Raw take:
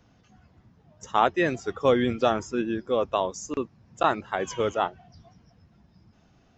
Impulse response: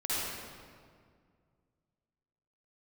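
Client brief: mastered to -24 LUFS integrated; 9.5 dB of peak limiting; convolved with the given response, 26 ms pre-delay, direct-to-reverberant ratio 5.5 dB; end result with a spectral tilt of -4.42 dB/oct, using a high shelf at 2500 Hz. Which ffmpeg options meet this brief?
-filter_complex "[0:a]highshelf=f=2.5k:g=4,alimiter=limit=-15.5dB:level=0:latency=1,asplit=2[a][b];[1:a]atrim=start_sample=2205,adelay=26[c];[b][c]afir=irnorm=-1:irlink=0,volume=-13dB[d];[a][d]amix=inputs=2:normalize=0,volume=4dB"

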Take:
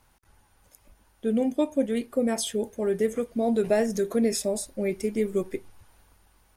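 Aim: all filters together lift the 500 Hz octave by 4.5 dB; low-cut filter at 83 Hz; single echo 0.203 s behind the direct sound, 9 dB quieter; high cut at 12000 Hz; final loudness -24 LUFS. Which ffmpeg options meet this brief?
-af "highpass=83,lowpass=12k,equalizer=f=500:t=o:g=5.5,aecho=1:1:203:0.355,volume=-0.5dB"

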